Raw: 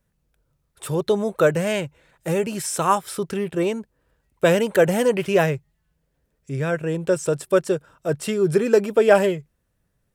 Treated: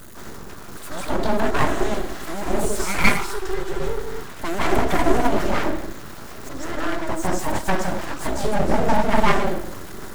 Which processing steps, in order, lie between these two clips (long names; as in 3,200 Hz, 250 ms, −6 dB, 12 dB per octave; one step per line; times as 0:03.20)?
converter with a step at zero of −27 dBFS
phaser with its sweep stopped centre 470 Hz, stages 8
convolution reverb RT60 0.70 s, pre-delay 150 ms, DRR −7 dB
time-frequency box erased 0:03.17–0:04.28, 360–920 Hz
full-wave rectification
level −4.5 dB